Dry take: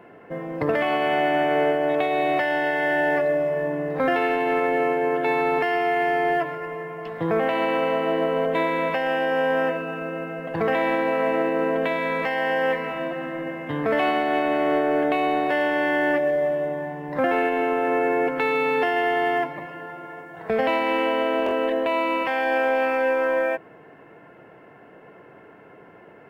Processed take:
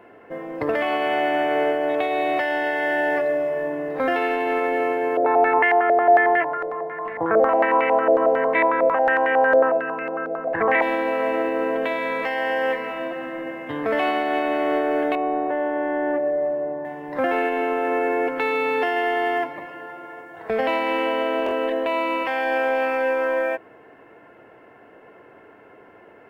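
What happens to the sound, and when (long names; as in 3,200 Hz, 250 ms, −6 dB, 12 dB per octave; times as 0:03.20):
0:05.17–0:10.82: low-pass on a step sequencer 11 Hz 600–2,100 Hz
0:15.15–0:16.85: low-pass filter 1,100 Hz
whole clip: parametric band 160 Hz −11.5 dB 0.51 octaves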